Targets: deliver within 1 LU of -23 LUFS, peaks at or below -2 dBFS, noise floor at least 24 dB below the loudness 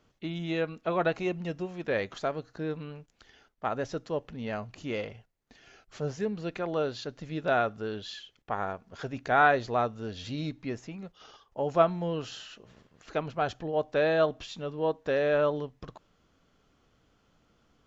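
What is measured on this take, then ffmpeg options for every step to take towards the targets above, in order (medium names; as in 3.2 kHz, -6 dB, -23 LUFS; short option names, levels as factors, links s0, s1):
loudness -31.0 LUFS; peak level -9.0 dBFS; loudness target -23.0 LUFS
-> -af "volume=2.51,alimiter=limit=0.794:level=0:latency=1"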